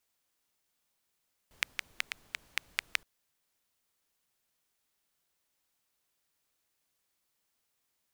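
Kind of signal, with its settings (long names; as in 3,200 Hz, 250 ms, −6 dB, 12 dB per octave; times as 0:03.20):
rain-like ticks over hiss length 1.52 s, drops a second 5.1, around 2,200 Hz, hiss −23 dB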